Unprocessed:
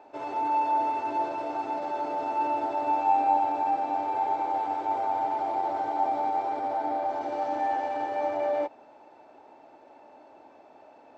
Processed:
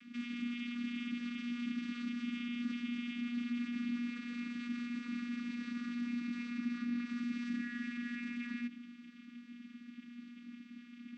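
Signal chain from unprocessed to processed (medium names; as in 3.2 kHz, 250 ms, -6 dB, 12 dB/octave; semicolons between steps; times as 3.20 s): inverse Chebyshev band-stop 460–920 Hz, stop band 60 dB; peak limiter -47 dBFS, peak gain reduction 10.5 dB; vocoder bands 16, saw 240 Hz; trim +17 dB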